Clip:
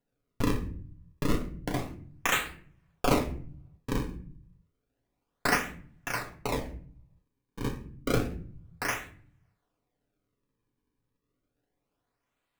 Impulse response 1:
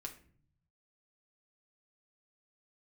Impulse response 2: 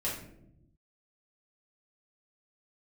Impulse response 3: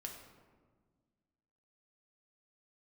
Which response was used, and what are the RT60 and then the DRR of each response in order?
1; 0.50 s, non-exponential decay, 1.6 s; 1.5, −7.0, 1.0 decibels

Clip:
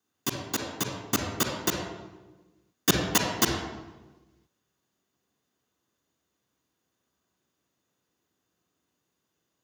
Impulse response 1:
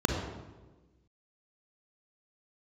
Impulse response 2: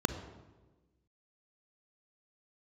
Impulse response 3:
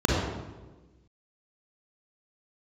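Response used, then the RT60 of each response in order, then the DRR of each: 1; 1.3, 1.3, 1.3 seconds; 0.5, 8.5, −5.0 decibels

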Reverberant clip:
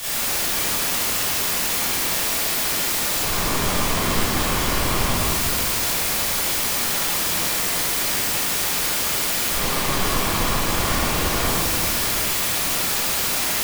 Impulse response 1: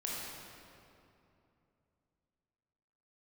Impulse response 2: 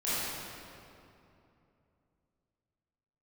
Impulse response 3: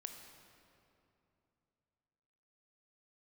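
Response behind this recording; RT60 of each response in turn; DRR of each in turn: 2; 2.8, 2.8, 2.9 seconds; −5.0, −12.5, 4.5 decibels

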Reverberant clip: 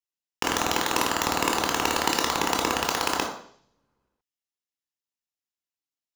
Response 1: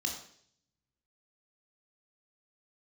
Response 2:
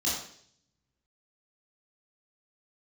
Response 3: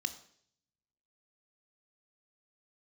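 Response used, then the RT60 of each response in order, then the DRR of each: 1; 0.60, 0.60, 0.60 seconds; 1.5, −7.5, 10.0 decibels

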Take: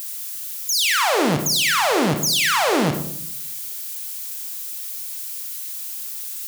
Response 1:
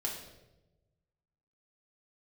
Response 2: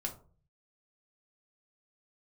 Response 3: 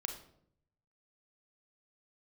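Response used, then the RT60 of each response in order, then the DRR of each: 3; 1.0, 0.40, 0.70 seconds; −1.5, 1.0, 5.0 decibels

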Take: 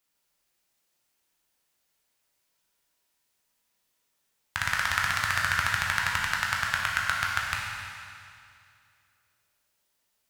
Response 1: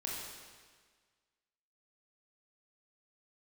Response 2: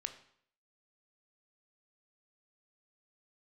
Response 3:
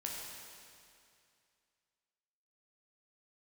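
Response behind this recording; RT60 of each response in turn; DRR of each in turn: 3; 1.6, 0.60, 2.4 seconds; −4.0, 7.5, −3.0 decibels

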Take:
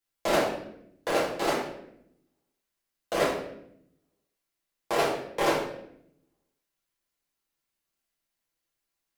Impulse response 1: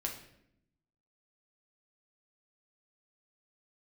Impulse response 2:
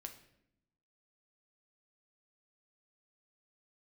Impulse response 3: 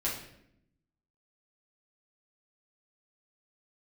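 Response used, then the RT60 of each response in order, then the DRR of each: 3; 0.75, 0.75, 0.75 seconds; 0.0, 4.5, −7.5 decibels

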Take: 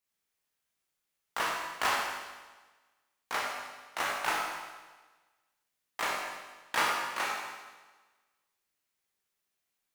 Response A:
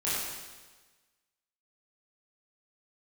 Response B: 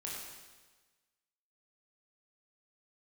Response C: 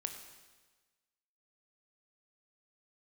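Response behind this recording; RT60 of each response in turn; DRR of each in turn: B; 1.3, 1.3, 1.3 seconds; −10.5, −4.5, 5.5 decibels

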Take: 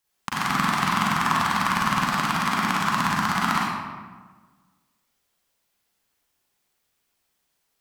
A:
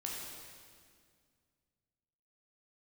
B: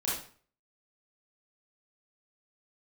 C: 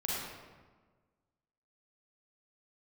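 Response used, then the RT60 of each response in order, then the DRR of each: C; 2.0, 0.45, 1.4 seconds; −3.5, −8.0, −6.5 decibels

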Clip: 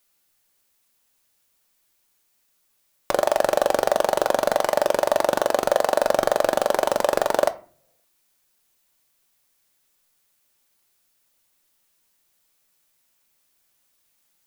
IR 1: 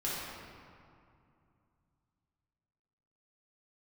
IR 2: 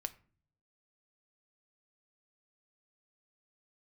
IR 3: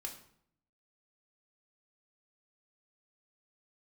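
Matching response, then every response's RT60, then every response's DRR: 2; 2.5, 0.45, 0.65 seconds; −8.5, 9.0, 2.0 decibels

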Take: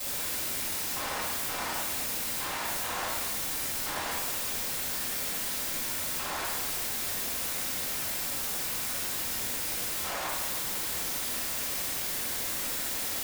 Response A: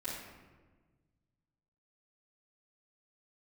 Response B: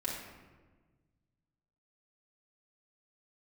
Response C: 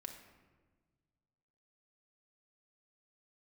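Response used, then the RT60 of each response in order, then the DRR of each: A; 1.4, 1.4, 1.4 seconds; −13.0, −6.0, 3.0 decibels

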